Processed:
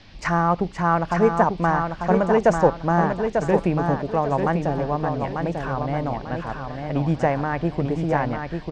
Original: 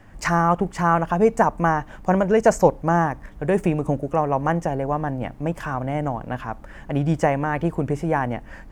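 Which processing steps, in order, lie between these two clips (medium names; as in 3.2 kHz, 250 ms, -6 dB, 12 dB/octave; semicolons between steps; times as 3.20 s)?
band noise 2–5.3 kHz -52 dBFS; distance through air 89 m; feedback delay 894 ms, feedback 33%, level -5.5 dB; trim -1 dB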